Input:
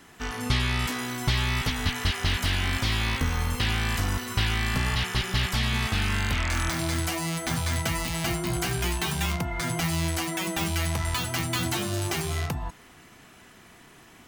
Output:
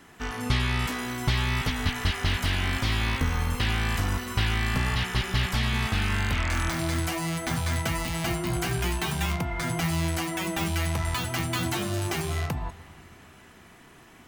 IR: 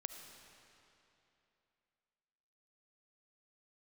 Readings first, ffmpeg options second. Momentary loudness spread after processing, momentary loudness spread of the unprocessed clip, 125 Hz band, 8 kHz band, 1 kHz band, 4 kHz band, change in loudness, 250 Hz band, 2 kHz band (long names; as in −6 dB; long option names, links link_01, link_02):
3 LU, 3 LU, +0.5 dB, −3.0 dB, 0.0 dB, −2.0 dB, −0.5 dB, +0.5 dB, −0.5 dB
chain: -filter_complex "[0:a]asplit=2[link_01][link_02];[1:a]atrim=start_sample=2205,lowpass=3400[link_03];[link_02][link_03]afir=irnorm=-1:irlink=0,volume=-4.5dB[link_04];[link_01][link_04]amix=inputs=2:normalize=0,volume=-2.5dB"